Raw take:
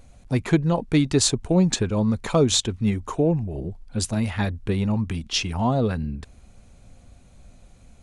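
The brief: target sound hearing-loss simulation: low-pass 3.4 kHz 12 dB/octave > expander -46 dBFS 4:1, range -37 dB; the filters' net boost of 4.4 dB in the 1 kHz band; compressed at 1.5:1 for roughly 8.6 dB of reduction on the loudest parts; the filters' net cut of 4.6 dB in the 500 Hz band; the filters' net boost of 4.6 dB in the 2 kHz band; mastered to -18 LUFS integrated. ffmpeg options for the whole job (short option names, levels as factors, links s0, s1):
-af "equalizer=f=500:t=o:g=-8,equalizer=f=1000:t=o:g=7,equalizer=f=2000:t=o:g=5,acompressor=threshold=0.0112:ratio=1.5,lowpass=3400,agate=range=0.0141:threshold=0.00501:ratio=4,volume=4.73"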